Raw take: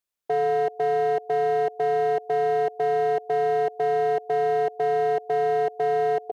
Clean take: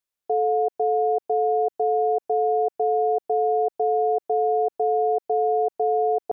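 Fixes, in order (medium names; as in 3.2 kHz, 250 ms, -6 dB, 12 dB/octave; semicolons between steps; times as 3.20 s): clip repair -18.5 dBFS; inverse comb 115 ms -22.5 dB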